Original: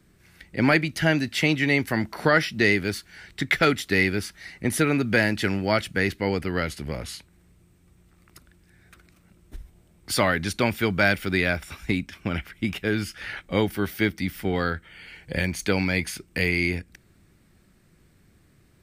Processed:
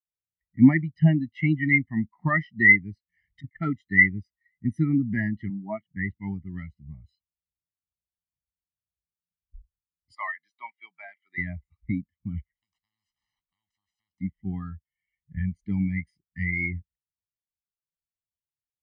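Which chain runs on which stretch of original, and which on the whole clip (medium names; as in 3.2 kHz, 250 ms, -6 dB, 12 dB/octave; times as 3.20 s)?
3.09–3.57 s: treble shelf 4.9 kHz +8 dB + band-stop 3.9 kHz, Q 13 + compressor with a negative ratio -29 dBFS, ratio -0.5
5.50–5.92 s: band-pass 170–5300 Hz + treble shelf 2.4 kHz -9.5 dB
10.15–11.38 s: high-pass 660 Hz + de-esser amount 65%
12.55–14.21 s: compression, threshold -27 dBFS + spectrum-flattening compressor 10:1
whole clip: low-pass 7.9 kHz 12 dB/octave; comb 1 ms, depth 78%; spectral contrast expander 2.5:1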